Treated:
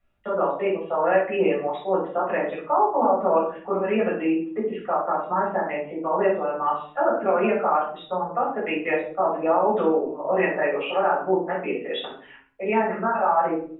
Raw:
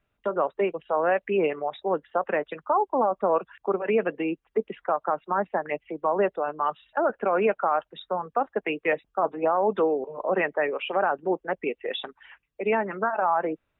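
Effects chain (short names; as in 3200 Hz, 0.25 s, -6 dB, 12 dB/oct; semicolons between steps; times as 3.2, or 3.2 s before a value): shoebox room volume 490 m³, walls furnished, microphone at 6.5 m; gain -7.5 dB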